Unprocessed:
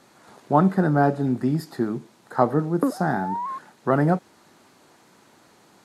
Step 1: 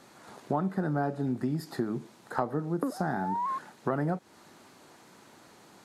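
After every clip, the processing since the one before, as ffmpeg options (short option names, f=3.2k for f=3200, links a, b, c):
-af "acompressor=threshold=-27dB:ratio=5"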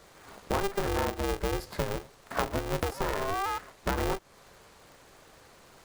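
-af "aeval=exprs='val(0)*sgn(sin(2*PI*200*n/s))':c=same"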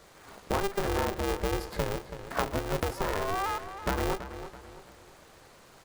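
-filter_complex "[0:a]asplit=2[a][b];[b]adelay=330,lowpass=f=4.7k:p=1,volume=-11.5dB,asplit=2[c][d];[d]adelay=330,lowpass=f=4.7k:p=1,volume=0.41,asplit=2[e][f];[f]adelay=330,lowpass=f=4.7k:p=1,volume=0.41,asplit=2[g][h];[h]adelay=330,lowpass=f=4.7k:p=1,volume=0.41[i];[a][c][e][g][i]amix=inputs=5:normalize=0"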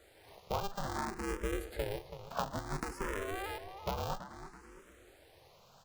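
-filter_complex "[0:a]asplit=2[a][b];[b]afreqshift=0.59[c];[a][c]amix=inputs=2:normalize=1,volume=-4dB"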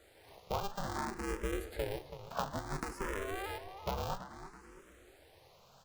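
-af "flanger=delay=9:depth=9.2:regen=83:speed=1.1:shape=triangular,volume=4dB"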